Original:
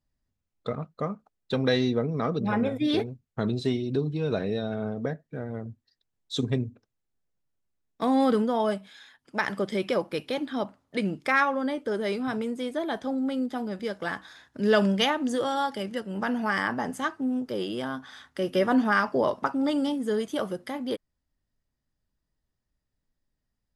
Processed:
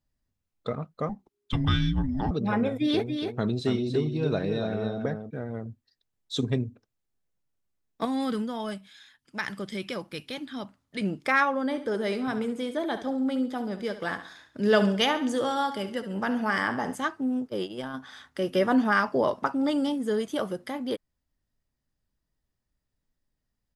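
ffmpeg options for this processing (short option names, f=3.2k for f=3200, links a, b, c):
-filter_complex "[0:a]asettb=1/sr,asplit=3[a][b][c];[a]atrim=end=1.094[d];[b]atrim=start=1.09:end=2.31,asetpts=PTS-STARTPTS,afade=t=in:d=0.004:c=qsin,afade=t=out:st=1.216:d=0.004:c=qsin,afreqshift=-410[e];[c]atrim=start=2.306[f];[d][e]acrossfade=d=0.004:c1=hsin:c2=qsin[g];[g][f]acrossfade=d=0.004:c1=qsin:c2=hsin,asplit=3[h][i][j];[h]afade=t=out:st=3.06:d=0.02[k];[i]aecho=1:1:284:0.501,afade=t=in:st=3.06:d=0.02,afade=t=out:st=5.29:d=0.02[l];[j]afade=t=in:st=5.29:d=0.02[m];[k][l][m]amix=inputs=3:normalize=0,asettb=1/sr,asplit=3[n][o][p];[n]atrim=end=8.054[q];[o]atrim=start=8.05:end=11.01,asetpts=PTS-STARTPTS,afade=t=in:d=0.004:c=qsin,afade=t=out:st=2.956:d=0.004:c=qsin,equalizer=f=580:t=o:w=2.3:g=-10.5[r];[p]atrim=start=11.006[s];[q][r]acrossfade=d=0.004:c1=hsin:c2=qsin[t];[t][s]acrossfade=d=0.004:c1=qsin:c2=hsin,asplit=3[u][v][w];[u]afade=t=out:st=11.7:d=0.02[x];[v]aecho=1:1:69|138|207|276:0.251|0.1|0.0402|0.0161,afade=t=in:st=11.7:d=0.02,afade=t=out:st=16.94:d=0.02[y];[w]afade=t=in:st=16.94:d=0.02[z];[x][y][z]amix=inputs=3:normalize=0,asplit=3[aa][ab][ac];[aa]afade=t=out:st=17.47:d=0.02[ad];[ab]agate=range=-21dB:threshold=-32dB:ratio=16:release=100:detection=peak,afade=t=in:st=17.47:d=0.02,afade=t=out:st=17.93:d=0.02[ae];[ac]afade=t=in:st=17.93:d=0.02[af];[ad][ae][af]amix=inputs=3:normalize=0"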